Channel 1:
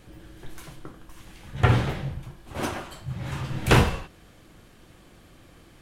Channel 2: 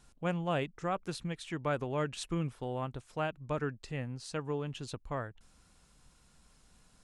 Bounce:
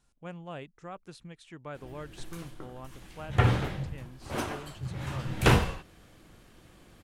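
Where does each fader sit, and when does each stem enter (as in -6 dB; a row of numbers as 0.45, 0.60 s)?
-3.5, -9.0 dB; 1.75, 0.00 s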